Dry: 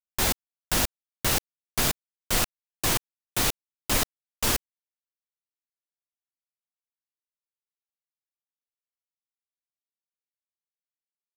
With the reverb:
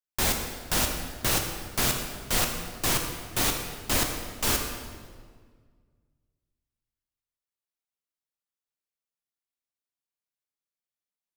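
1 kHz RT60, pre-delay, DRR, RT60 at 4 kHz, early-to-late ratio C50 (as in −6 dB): 1.6 s, 15 ms, 3.0 dB, 1.3 s, 4.5 dB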